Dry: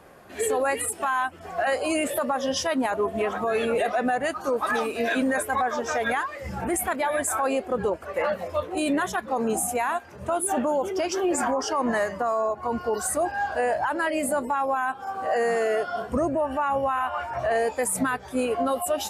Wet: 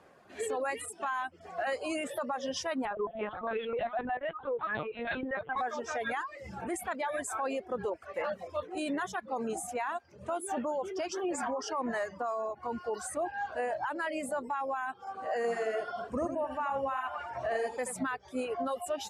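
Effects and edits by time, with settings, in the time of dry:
2.85–5.56 s: LPC vocoder at 8 kHz pitch kept
13.14–13.80 s: band-stop 5 kHz, Q 7.2
15.36–17.96 s: delay 81 ms -5 dB
whole clip: low-pass 7.9 kHz 12 dB/octave; reverb removal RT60 0.59 s; high-pass 110 Hz 6 dB/octave; trim -8 dB

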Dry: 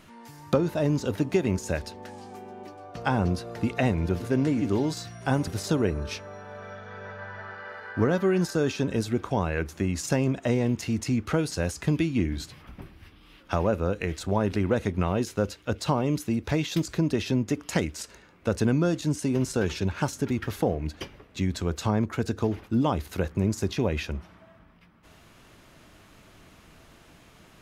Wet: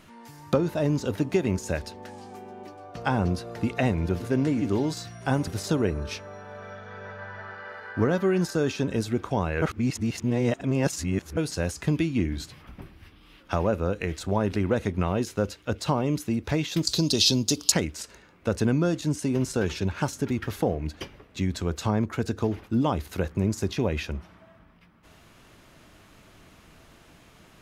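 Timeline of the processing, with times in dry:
9.62–11.37 s: reverse
16.87–17.72 s: resonant high shelf 2.9 kHz +14 dB, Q 3

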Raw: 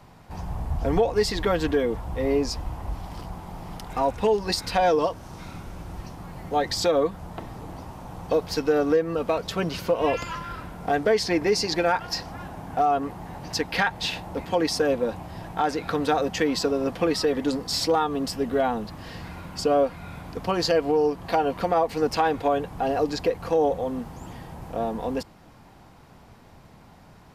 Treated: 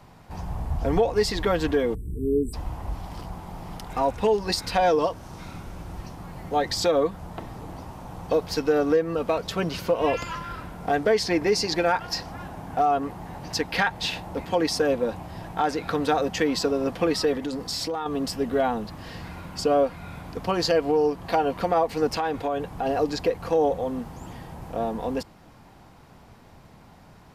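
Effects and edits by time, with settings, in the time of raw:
1.94–2.54 s: spectral selection erased 460–7600 Hz
17.35–18.06 s: compression 4:1, threshold -26 dBFS
22.09–22.86 s: compression 3:1, threshold -23 dBFS

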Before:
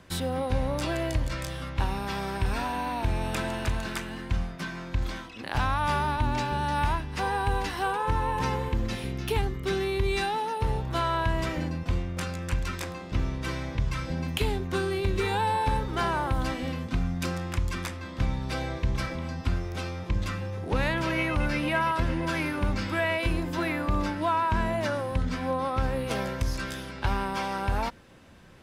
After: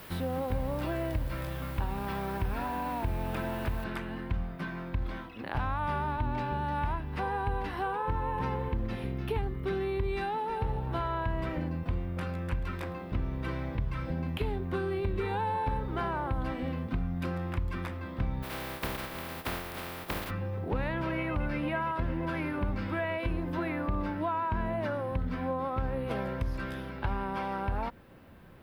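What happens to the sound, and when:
3.84 s: noise floor step -40 dB -62 dB
10.14–10.82 s: echo throw 350 ms, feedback 15%, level -12 dB
18.42–20.29 s: spectral contrast reduction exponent 0.23
whole clip: peaking EQ 6.7 kHz -12 dB 1 oct; compression 2:1, threshold -30 dBFS; treble shelf 2.8 kHz -10 dB

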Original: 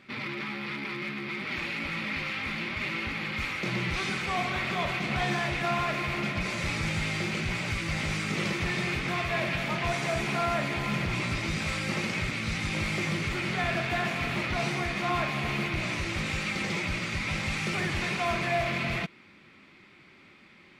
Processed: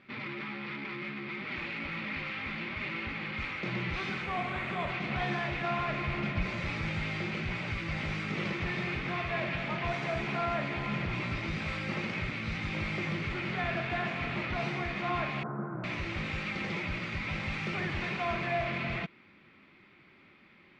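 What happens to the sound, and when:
4.24–4.90 s: decimation joined by straight lines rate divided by 4×
5.88–6.60 s: bass shelf 100 Hz +10 dB
15.43–15.84 s: Chebyshev band-pass 120–1500 Hz, order 5
whole clip: low-pass 3.4 kHz 12 dB/octave; trim -3.5 dB

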